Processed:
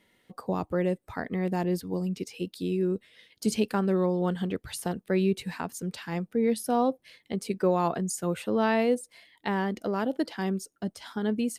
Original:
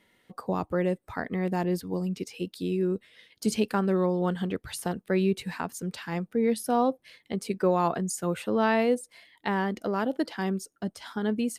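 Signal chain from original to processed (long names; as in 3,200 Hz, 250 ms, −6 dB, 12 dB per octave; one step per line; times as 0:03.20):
parametric band 1,300 Hz −2.5 dB 1.4 octaves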